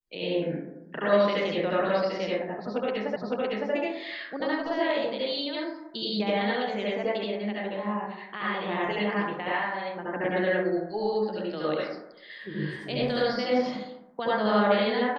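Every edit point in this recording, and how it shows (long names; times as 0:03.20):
0:03.16: the same again, the last 0.56 s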